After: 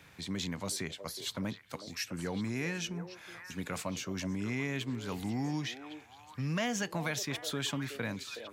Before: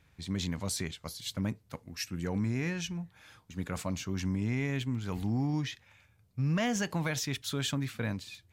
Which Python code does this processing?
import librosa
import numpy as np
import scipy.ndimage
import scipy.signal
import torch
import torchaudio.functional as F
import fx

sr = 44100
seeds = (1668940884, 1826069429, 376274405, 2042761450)

y = fx.highpass(x, sr, hz=230.0, slope=6)
y = fx.echo_stepped(y, sr, ms=369, hz=490.0, octaves=1.4, feedback_pct=70, wet_db=-7.5)
y = fx.band_squash(y, sr, depth_pct=40)